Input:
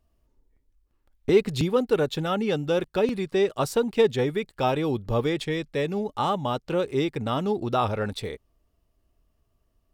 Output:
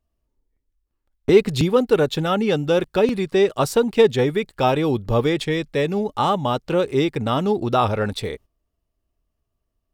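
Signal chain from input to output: gate -47 dBFS, range -12 dB; gain +5.5 dB

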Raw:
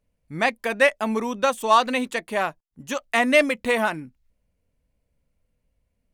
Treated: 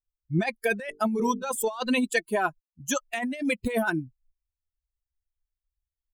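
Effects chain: per-bin expansion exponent 2; 0.83–1.56 notches 50/100/150/200/250/300/350/400/450 Hz; negative-ratio compressor -32 dBFS, ratio -1; gain +4.5 dB

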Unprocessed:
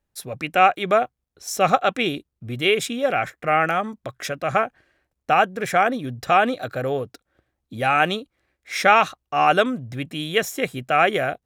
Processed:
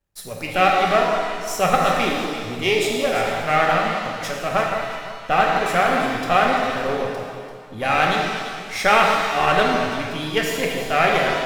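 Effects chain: half-wave gain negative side -7 dB; echo with dull and thin repeats by turns 0.17 s, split 1500 Hz, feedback 58%, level -6.5 dB; shimmer reverb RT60 1.3 s, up +7 st, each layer -8 dB, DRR 0 dB

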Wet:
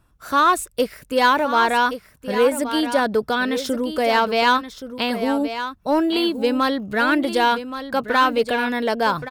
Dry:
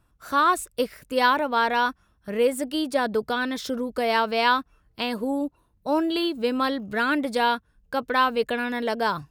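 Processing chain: in parallel at -3 dB: hard clip -17.5 dBFS, distortion -15 dB; on the sum: echo 1.124 s -10.5 dB

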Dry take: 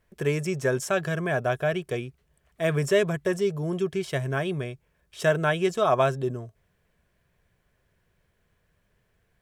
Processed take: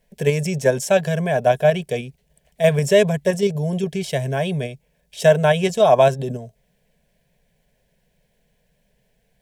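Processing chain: dynamic EQ 1100 Hz, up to +7 dB, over -39 dBFS, Q 1.8; in parallel at +3 dB: level quantiser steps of 11 dB; on the sum: fixed phaser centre 330 Hz, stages 6; gain +3.5 dB

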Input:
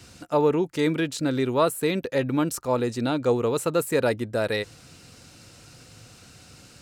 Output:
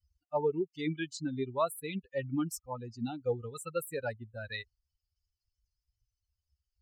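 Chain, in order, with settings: per-bin expansion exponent 3; gain -4.5 dB

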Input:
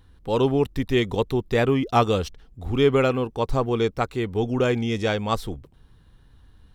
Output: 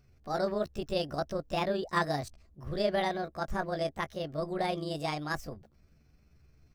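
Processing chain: delay-line pitch shifter +6.5 st; gain -9 dB

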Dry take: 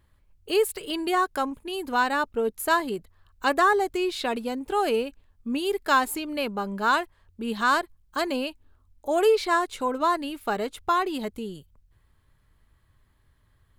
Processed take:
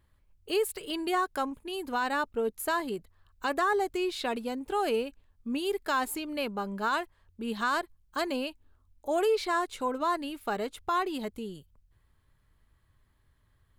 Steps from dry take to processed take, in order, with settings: limiter -15.5 dBFS, peak gain reduction 5 dB; gain -4 dB

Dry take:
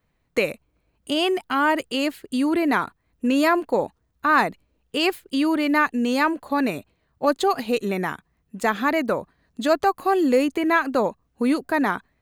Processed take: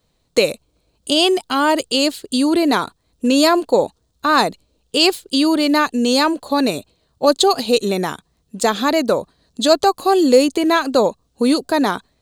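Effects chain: ten-band EQ 500 Hz +4 dB, 2000 Hz -8 dB, 4000 Hz +11 dB, 8000 Hz +9 dB; gain +4 dB

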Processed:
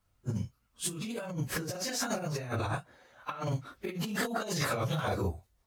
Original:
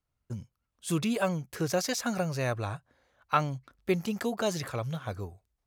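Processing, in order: phase scrambler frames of 0.1 s; 2.74–5.21 low shelf 91 Hz -11.5 dB; negative-ratio compressor -38 dBFS, ratio -1; gain +3.5 dB

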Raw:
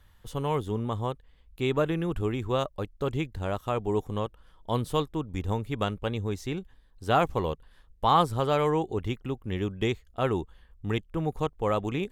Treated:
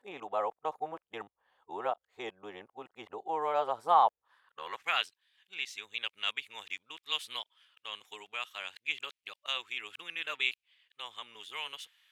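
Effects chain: whole clip reversed; tilt +4 dB/oct; band-pass sweep 760 Hz -> 2600 Hz, 4.11–5.02; gain +2.5 dB

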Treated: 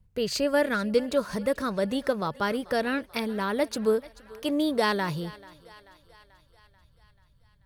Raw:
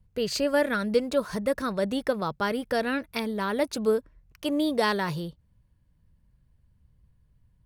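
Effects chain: thinning echo 0.437 s, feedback 61%, high-pass 410 Hz, level -19.5 dB

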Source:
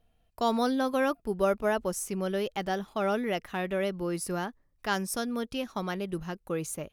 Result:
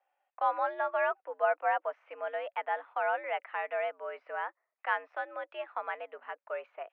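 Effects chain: mistuned SSB +88 Hz 510–2400 Hz

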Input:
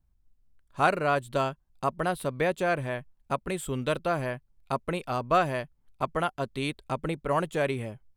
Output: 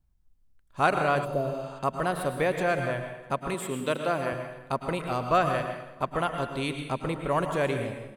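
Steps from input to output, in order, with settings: plate-style reverb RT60 0.87 s, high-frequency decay 0.85×, pre-delay 95 ms, DRR 5.5 dB; 1.27–1.76 spectral repair 770–9500 Hz after; 3.54–4.33 HPF 170 Hz 12 dB/oct; on a send: feedback echo 0.326 s, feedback 32%, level -23 dB

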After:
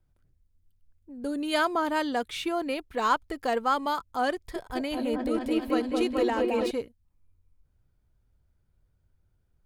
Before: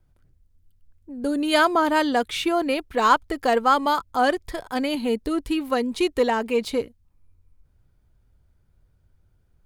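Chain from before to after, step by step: 4.34–6.71 repeats that get brighter 0.215 s, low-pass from 750 Hz, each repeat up 1 oct, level 0 dB; gain -7 dB

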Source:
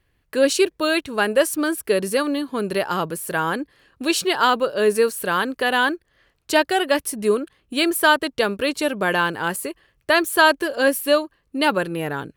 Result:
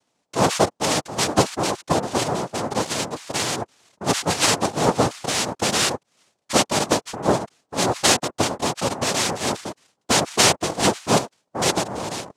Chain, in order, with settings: 9.28–9.7 resonant low shelf 210 Hz +10.5 dB, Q 1.5; noise vocoder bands 2; gain -1.5 dB

